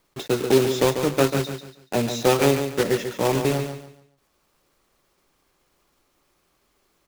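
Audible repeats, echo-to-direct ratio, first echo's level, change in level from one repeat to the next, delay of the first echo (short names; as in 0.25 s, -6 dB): 3, -7.5 dB, -8.0 dB, -10.5 dB, 0.142 s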